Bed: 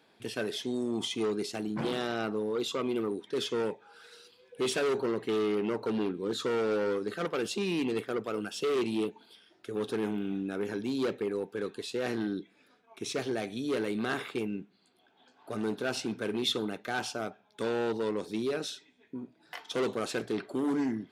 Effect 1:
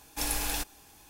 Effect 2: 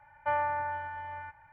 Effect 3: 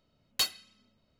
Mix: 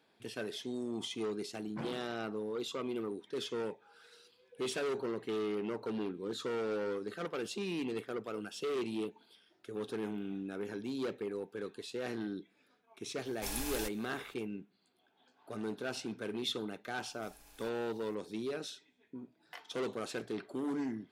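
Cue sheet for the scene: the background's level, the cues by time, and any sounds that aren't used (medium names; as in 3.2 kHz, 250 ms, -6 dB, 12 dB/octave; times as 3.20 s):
bed -6.5 dB
13.25 s: add 1 -8 dB
17.06 s: add 1 -14.5 dB + compression 5:1, threshold -43 dBFS
not used: 2, 3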